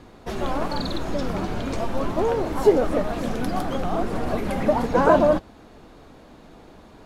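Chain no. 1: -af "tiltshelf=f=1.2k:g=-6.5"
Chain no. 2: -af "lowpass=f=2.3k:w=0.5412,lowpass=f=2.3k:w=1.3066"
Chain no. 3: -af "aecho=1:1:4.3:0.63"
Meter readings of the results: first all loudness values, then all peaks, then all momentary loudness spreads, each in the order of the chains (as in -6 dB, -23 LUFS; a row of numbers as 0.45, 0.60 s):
-27.0, -23.5, -22.0 LUFS; -7.0, -4.5, -2.0 dBFS; 10, 11, 10 LU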